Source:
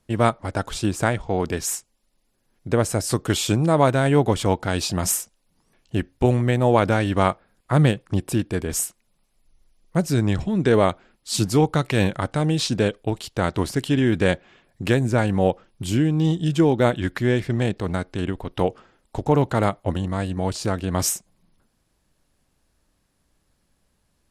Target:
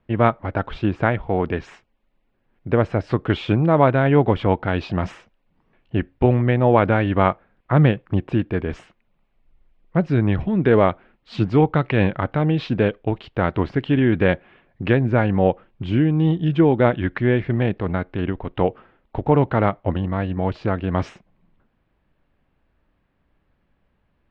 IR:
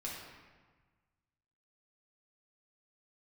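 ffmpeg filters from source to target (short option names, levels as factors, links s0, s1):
-af "lowpass=f=2800:w=0.5412,lowpass=f=2800:w=1.3066,volume=1.26"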